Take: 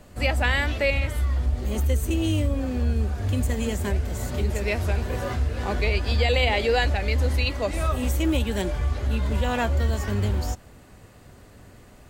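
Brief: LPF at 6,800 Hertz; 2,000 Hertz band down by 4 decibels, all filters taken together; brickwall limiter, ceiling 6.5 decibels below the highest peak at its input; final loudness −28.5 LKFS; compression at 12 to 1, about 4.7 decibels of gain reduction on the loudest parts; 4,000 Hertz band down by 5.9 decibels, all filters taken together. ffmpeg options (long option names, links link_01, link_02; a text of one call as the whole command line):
ffmpeg -i in.wav -af "lowpass=6800,equalizer=frequency=2000:width_type=o:gain=-3,equalizer=frequency=4000:width_type=o:gain=-6.5,acompressor=threshold=-23dB:ratio=12,volume=3dB,alimiter=limit=-20dB:level=0:latency=1" out.wav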